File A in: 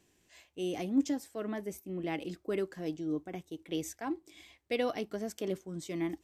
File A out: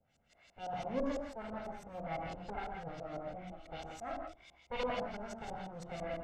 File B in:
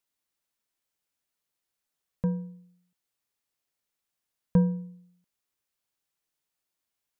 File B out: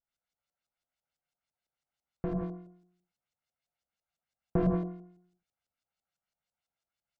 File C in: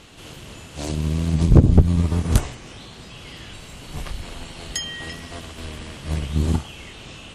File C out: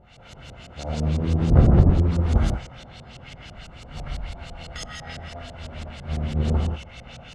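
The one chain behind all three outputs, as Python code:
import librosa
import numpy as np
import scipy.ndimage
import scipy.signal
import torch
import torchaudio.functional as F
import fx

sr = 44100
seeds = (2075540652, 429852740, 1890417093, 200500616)

y = fx.lower_of_two(x, sr, delay_ms=1.4)
y = fx.rev_gated(y, sr, seeds[0], gate_ms=210, shape='flat', drr_db=-2.0)
y = fx.filter_lfo_lowpass(y, sr, shape='saw_up', hz=6.0, low_hz=510.0, high_hz=7700.0, q=1.1)
y = y * 10.0 ** (-5.0 / 20.0)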